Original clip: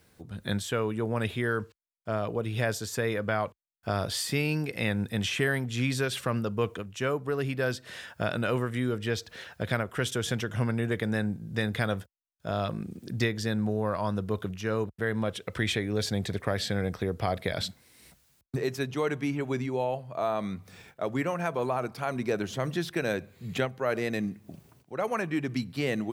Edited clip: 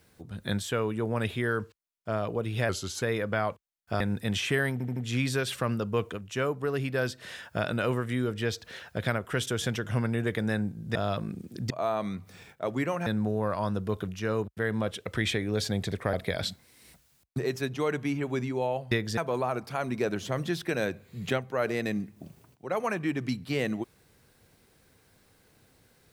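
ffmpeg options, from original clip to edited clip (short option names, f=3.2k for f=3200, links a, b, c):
-filter_complex "[0:a]asplit=13[a][b][c][d][e][f][g][h][i][j][k][l][m];[a]atrim=end=2.694[n];[b]atrim=start=2.69:end=2.98,asetpts=PTS-STARTPTS,asetrate=38367,aresample=44100[o];[c]atrim=start=2.976:end=3.962[p];[d]atrim=start=4.888:end=5.692[q];[e]atrim=start=5.608:end=5.692[r];[f]atrim=start=5.608:end=5.692[s];[g]atrim=start=5.608:end=11.602[t];[h]atrim=start=12.468:end=13.222[u];[i]atrim=start=20.088:end=21.452[v];[j]atrim=start=13.478:end=16.552[w];[k]atrim=start=17.308:end=20.092[x];[l]atrim=start=13.218:end=13.482[y];[m]atrim=start=21.448[z];[n][o]acrossfade=d=0.004:c1=hsin:c2=hsin[aa];[aa][p]acrossfade=d=0.004:c1=hsin:c2=hsin[ab];[ab][q]acrossfade=d=0.004:c1=hsin:c2=hsin[ac];[ac][r]acrossfade=d=0.004:c1=hsin:c2=hsin[ad];[ad][s]acrossfade=d=0.004:c1=hsin:c2=hsin[ae];[ae][t]acrossfade=d=0.004:c1=hsin:c2=hsin[af];[af][u]acrossfade=d=0.004:c1=hsin:c2=hsin[ag];[ag][v]acrossfade=d=0.004:c1=hsin:c2=hsin[ah];[ah][w]acrossfade=d=0.004:c1=hsin:c2=hsin[ai];[ai][x]acrossfade=d=0.004:c1=hsin:c2=hsin[aj];[aj][y]acrossfade=d=0.004:c1=hsin:c2=hsin[ak];[ak][z]acrossfade=d=0.004:c1=hsin:c2=hsin"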